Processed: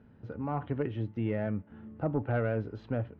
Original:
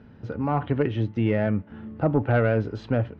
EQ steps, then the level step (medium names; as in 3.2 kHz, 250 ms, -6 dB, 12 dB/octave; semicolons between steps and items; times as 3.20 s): low-pass 2.5 kHz 6 dB/octave; -8.5 dB